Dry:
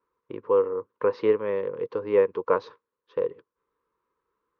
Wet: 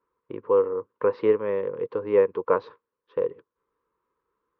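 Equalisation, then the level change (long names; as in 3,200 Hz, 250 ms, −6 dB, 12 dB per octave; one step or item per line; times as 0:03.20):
high-frequency loss of the air 210 metres
+1.5 dB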